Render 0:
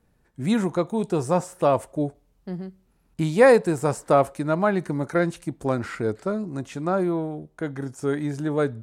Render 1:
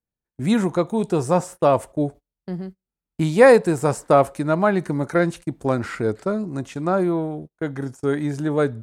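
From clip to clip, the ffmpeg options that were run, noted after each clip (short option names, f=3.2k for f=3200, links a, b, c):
-af "agate=range=-29dB:threshold=-38dB:ratio=16:detection=peak,volume=3dB"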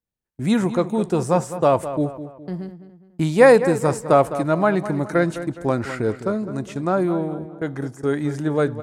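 -filter_complex "[0:a]asplit=2[a][b];[b]adelay=207,lowpass=f=3.1k:p=1,volume=-12dB,asplit=2[c][d];[d]adelay=207,lowpass=f=3.1k:p=1,volume=0.41,asplit=2[e][f];[f]adelay=207,lowpass=f=3.1k:p=1,volume=0.41,asplit=2[g][h];[h]adelay=207,lowpass=f=3.1k:p=1,volume=0.41[i];[a][c][e][g][i]amix=inputs=5:normalize=0"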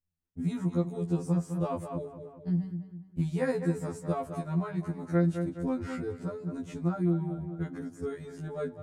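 -af "bass=f=250:g=15,treble=f=4k:g=1,acompressor=threshold=-20dB:ratio=3,afftfilt=real='re*2*eq(mod(b,4),0)':imag='im*2*eq(mod(b,4),0)':win_size=2048:overlap=0.75,volume=-7dB"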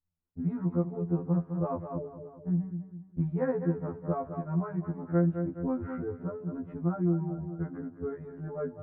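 -af "lowpass=f=1.5k:w=0.5412,lowpass=f=1.5k:w=1.3066"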